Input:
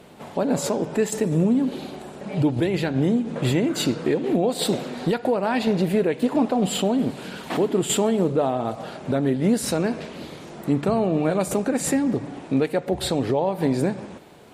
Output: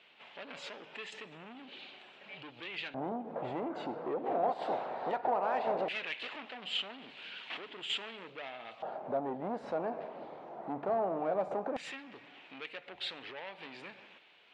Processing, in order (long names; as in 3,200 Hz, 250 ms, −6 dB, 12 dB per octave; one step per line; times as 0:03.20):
0:04.25–0:06.35: ceiling on every frequency bin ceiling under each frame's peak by 15 dB
low-pass filter 3,800 Hz 12 dB per octave
soft clipping −20 dBFS, distortion −11 dB
auto-filter band-pass square 0.17 Hz 750–2,800 Hz